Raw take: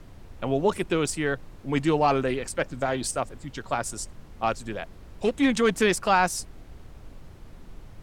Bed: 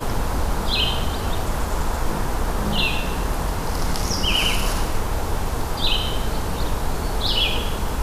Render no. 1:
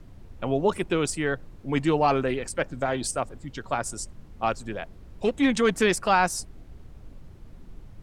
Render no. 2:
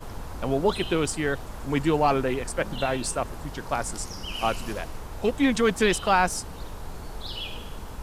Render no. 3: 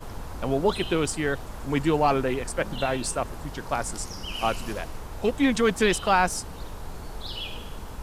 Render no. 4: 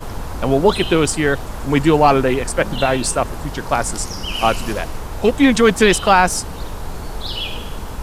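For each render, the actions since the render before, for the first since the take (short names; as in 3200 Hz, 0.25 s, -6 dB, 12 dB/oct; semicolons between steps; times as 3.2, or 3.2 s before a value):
denoiser 6 dB, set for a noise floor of -47 dBFS
add bed -14.5 dB
nothing audible
gain +9.5 dB; limiter -1 dBFS, peak gain reduction 2 dB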